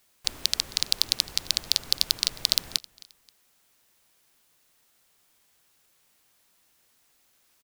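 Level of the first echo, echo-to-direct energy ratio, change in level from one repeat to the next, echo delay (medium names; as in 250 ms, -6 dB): -23.0 dB, -22.5 dB, -9.0 dB, 265 ms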